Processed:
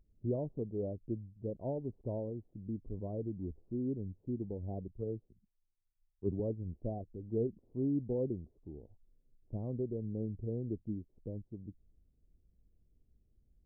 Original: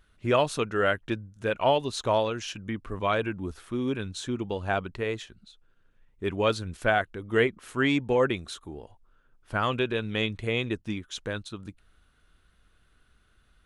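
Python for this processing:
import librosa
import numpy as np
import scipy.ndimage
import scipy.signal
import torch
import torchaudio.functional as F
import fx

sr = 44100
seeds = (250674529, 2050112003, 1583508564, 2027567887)

y = scipy.ndimage.gaussian_filter1d(x, 19.0, mode='constant')
y = fx.band_widen(y, sr, depth_pct=100, at=(4.88, 6.4))
y = F.gain(torch.from_numpy(y), -4.5).numpy()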